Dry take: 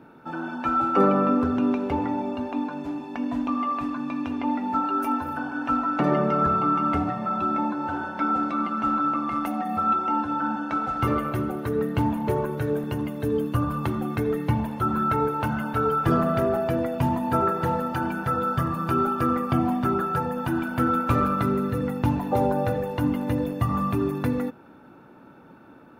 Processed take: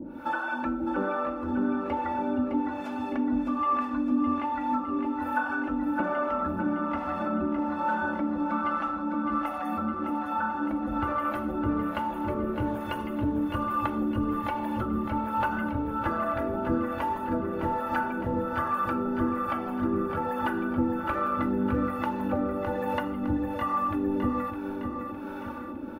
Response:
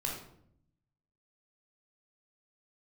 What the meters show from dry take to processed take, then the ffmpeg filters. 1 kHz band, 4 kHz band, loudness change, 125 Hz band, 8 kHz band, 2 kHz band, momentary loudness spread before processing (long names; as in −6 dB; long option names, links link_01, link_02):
−3.5 dB, −4.0 dB, −4.0 dB, −9.5 dB, can't be measured, +0.5 dB, 7 LU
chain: -filter_complex "[0:a]acrossover=split=2700[link_01][link_02];[link_02]acompressor=threshold=-57dB:ratio=4:attack=1:release=60[link_03];[link_01][link_03]amix=inputs=2:normalize=0,aecho=1:1:3.5:0.98,acompressor=threshold=-32dB:ratio=6,acrossover=split=520[link_04][link_05];[link_04]aeval=exprs='val(0)*(1-1/2+1/2*cos(2*PI*1.2*n/s))':channel_layout=same[link_06];[link_05]aeval=exprs='val(0)*(1-1/2-1/2*cos(2*PI*1.2*n/s))':channel_layout=same[link_07];[link_06][link_07]amix=inputs=2:normalize=0,aecho=1:1:610|1220|1830|2440|3050|3660|4270:0.447|0.255|0.145|0.0827|0.0472|0.0269|0.0153,asplit=2[link_08][link_09];[1:a]atrim=start_sample=2205,highshelf=frequency=8700:gain=11[link_10];[link_09][link_10]afir=irnorm=-1:irlink=0,volume=-11.5dB[link_11];[link_08][link_11]amix=inputs=2:normalize=0,volume=8.5dB"